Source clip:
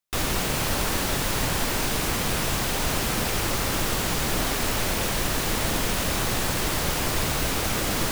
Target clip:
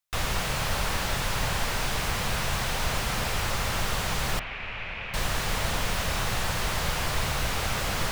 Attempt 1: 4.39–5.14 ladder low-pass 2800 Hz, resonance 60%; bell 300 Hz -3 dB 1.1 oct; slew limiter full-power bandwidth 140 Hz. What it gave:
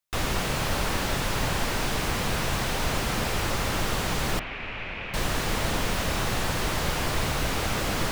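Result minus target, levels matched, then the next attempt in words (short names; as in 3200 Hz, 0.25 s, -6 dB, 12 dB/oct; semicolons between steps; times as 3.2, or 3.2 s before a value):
250 Hz band +4.5 dB
4.39–5.14 ladder low-pass 2800 Hz, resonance 60%; bell 300 Hz -12.5 dB 1.1 oct; slew limiter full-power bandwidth 140 Hz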